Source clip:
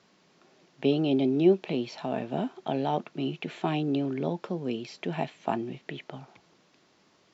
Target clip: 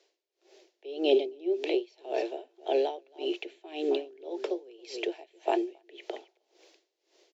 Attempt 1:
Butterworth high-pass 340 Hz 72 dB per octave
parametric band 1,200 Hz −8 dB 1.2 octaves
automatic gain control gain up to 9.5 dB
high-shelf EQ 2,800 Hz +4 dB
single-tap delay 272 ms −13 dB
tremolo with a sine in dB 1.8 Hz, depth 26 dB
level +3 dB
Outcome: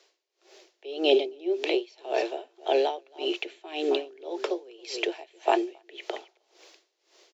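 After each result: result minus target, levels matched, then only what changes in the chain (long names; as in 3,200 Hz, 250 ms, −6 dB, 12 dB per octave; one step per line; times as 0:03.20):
4,000 Hz band +4.0 dB; 1,000 Hz band +2.5 dB
change: high-shelf EQ 2,800 Hz −4.5 dB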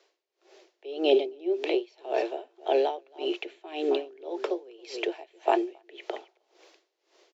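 1,000 Hz band +2.5 dB
change: parametric band 1,200 Hz −18.5 dB 1.2 octaves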